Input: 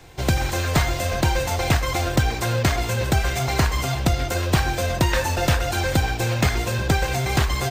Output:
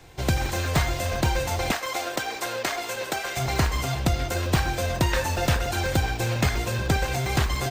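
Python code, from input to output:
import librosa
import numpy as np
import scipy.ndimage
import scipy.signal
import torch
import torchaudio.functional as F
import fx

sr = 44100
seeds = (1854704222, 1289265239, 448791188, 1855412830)

y = fx.highpass(x, sr, hz=410.0, slope=12, at=(1.71, 3.37))
y = fx.buffer_crackle(y, sr, first_s=0.36, period_s=0.1, block=64, kind='zero')
y = F.gain(torch.from_numpy(y), -3.0).numpy()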